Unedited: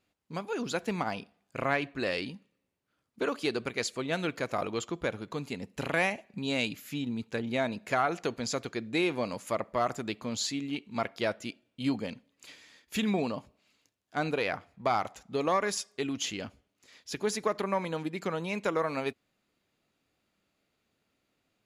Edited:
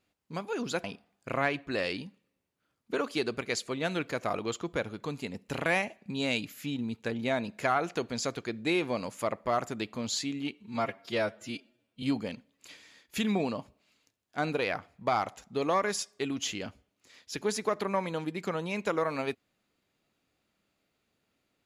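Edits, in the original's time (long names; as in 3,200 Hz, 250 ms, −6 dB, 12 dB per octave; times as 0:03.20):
0:00.84–0:01.12: remove
0:10.82–0:11.81: time-stretch 1.5×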